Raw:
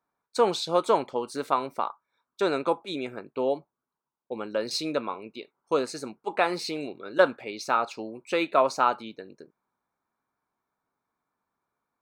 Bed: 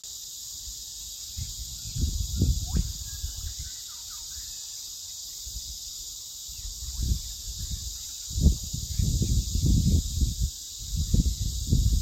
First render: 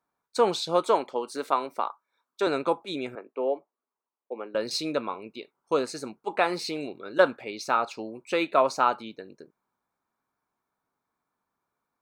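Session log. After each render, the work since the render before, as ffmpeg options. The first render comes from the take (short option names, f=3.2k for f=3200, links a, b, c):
-filter_complex "[0:a]asettb=1/sr,asplit=3[a][b][c];[a]atrim=end=0.854[d];[b]atrim=start=0.85:end=2.47,asetpts=PTS-STARTPTS,afade=t=in:d=0.004:c=qsin,afade=t=out:st=1.616:d=0.004:c=qsin,highpass=250[e];[c]atrim=start=2.466[f];[d][e]acrossfade=d=0.004:c1=hsin:c2=qsin[g];[g][f]acrossfade=d=0.004:c1=qsin:c2=hsin,asettb=1/sr,asplit=3[h][i][j];[h]atrim=end=3.154[k];[i]atrim=start=3.15:end=4.55,asetpts=PTS-STARTPTS,afade=t=in:d=0.004:c=qsin,afade=t=out:st=1.396:d=0.004:c=qsin,highpass=f=280:w=0.5412,highpass=f=280:w=1.3066,equalizer=f=320:t=q:w=4:g=-4,equalizer=f=910:t=q:w=4:g=-3,equalizer=f=1.5k:t=q:w=4:g=-6,lowpass=f=2.4k:w=0.5412,lowpass=f=2.4k:w=1.3066[l];[j]atrim=start=4.546[m];[k][l]acrossfade=d=0.004:c1=hsin:c2=qsin[n];[n][m]acrossfade=d=0.004:c1=qsin:c2=hsin"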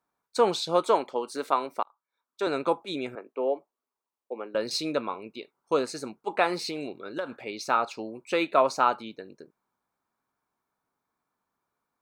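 -filter_complex "[0:a]asettb=1/sr,asplit=3[a][b][c];[a]atrim=end=6.584[d];[b]atrim=start=6.58:end=7.38,asetpts=PTS-STARTPTS,afade=t=in:d=0.004:c=qsin,afade=t=out:st=0.796:d=0.004:c=qsin,acompressor=threshold=-28dB:ratio=6:attack=3.2:release=140:knee=1:detection=peak[e];[c]atrim=start=7.376[f];[d][e]acrossfade=d=0.004:c1=hsin:c2=qsin[g];[g][f]acrossfade=d=0.004:c1=qsin:c2=hsin,asplit=2[h][i];[h]atrim=end=1.83,asetpts=PTS-STARTPTS,afade=t=out:st=1.826:d=0.004:c=hsin[j];[i]atrim=start=1.83,asetpts=PTS-STARTPTS,afade=t=in:d=0.84[k];[j][k]concat=n=2:v=0:a=1"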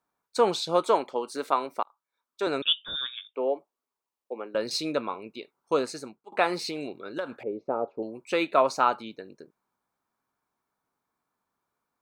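-filter_complex "[0:a]asettb=1/sr,asplit=3[a][b][c];[a]atrim=end=2.624[d];[b]atrim=start=2.62:end=3.35,asetpts=PTS-STARTPTS,afade=t=in:d=0.004:c=qsin,afade=t=out:st=0.726:d=0.004:c=qsin,lowpass=f=3.3k:t=q:w=0.5098,lowpass=f=3.3k:t=q:w=0.6013,lowpass=f=3.3k:t=q:w=0.9,lowpass=f=3.3k:t=q:w=2.563,afreqshift=-3900[e];[c]atrim=start=3.346[f];[d][e]acrossfade=d=0.004:c1=hsin:c2=qsin[g];[g][f]acrossfade=d=0.004:c1=qsin:c2=hsin,asettb=1/sr,asplit=3[h][i][j];[h]atrim=end=7.434[k];[i]atrim=start=7.43:end=8.03,asetpts=PTS-STARTPTS,afade=t=in:d=0.004:c=qsin,afade=t=out:st=0.596:d=0.004:c=qsin,lowpass=f=500:t=q:w=2.1[l];[j]atrim=start=8.026[m];[k][l]acrossfade=d=0.004:c1=hsin:c2=qsin[n];[n][m]acrossfade=d=0.004:c1=qsin:c2=hsin,asplit=2[o][p];[o]atrim=end=6.32,asetpts=PTS-STARTPTS,afade=t=out:st=5.88:d=0.44:silence=0.0668344[q];[p]atrim=start=6.32,asetpts=PTS-STARTPTS,afade=t=in:d=0.004:c=hsin:silence=0.0668344[r];[q][r]concat=n=2:v=0:a=1"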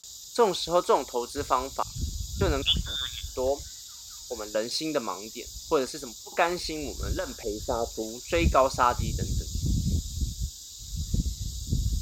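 -filter_complex "[1:a]volume=-4.5dB[a];[0:a][a]amix=inputs=2:normalize=0"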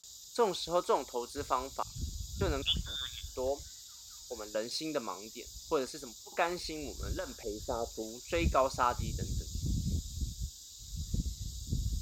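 -af "volume=-7dB"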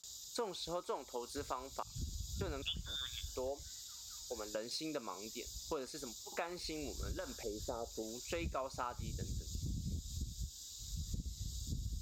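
-af "acompressor=threshold=-39dB:ratio=4"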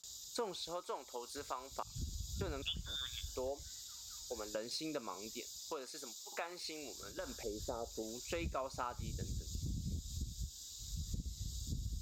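-filter_complex "[0:a]asettb=1/sr,asplit=3[a][b][c];[a]atrim=end=0.624[d];[b]atrim=start=0.62:end=1.71,asetpts=PTS-STARTPTS,afade=t=in:d=0.004:c=qsin,afade=t=out:st=1.086:d=0.004:c=qsin,lowshelf=f=350:g=-9[e];[c]atrim=start=1.706[f];[d][e]acrossfade=d=0.004:c1=hsin:c2=qsin[g];[g][f]acrossfade=d=0.004:c1=qsin:c2=hsin,asettb=1/sr,asplit=3[h][i][j];[h]atrim=end=5.404[k];[i]atrim=start=5.4:end=7.18,asetpts=PTS-STARTPTS,afade=t=in:d=0.004:c=qsin,afade=t=out:st=1.776:d=0.004:c=qsin,highpass=f=540:p=1[l];[j]atrim=start=7.176[m];[k][l]acrossfade=d=0.004:c1=hsin:c2=qsin[n];[n][m]acrossfade=d=0.004:c1=qsin:c2=hsin"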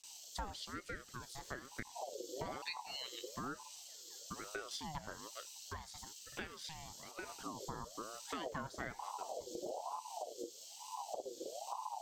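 -af "aeval=exprs='val(0)*sin(2*PI*680*n/s+680*0.4/1.1*sin(2*PI*1.1*n/s))':c=same"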